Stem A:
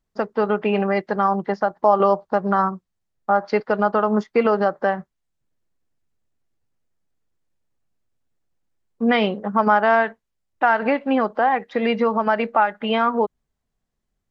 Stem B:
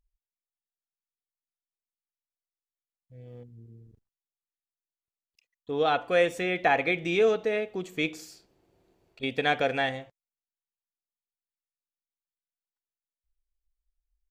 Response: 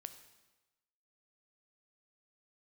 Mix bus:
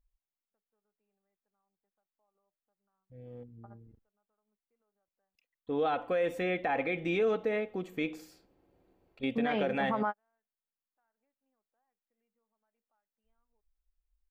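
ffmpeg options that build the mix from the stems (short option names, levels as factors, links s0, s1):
-filter_complex "[0:a]highshelf=f=4200:g=-11.5,adelay=350,volume=0.398[s0];[1:a]equalizer=f=6700:t=o:w=2.1:g=-12.5,aecho=1:1:3.8:0.32,volume=0.891,asplit=2[s1][s2];[s2]apad=whole_len=646439[s3];[s0][s3]sidechaingate=range=0.00158:threshold=0.00447:ratio=16:detection=peak[s4];[s4][s1]amix=inputs=2:normalize=0,alimiter=limit=0.0841:level=0:latency=1:release=53"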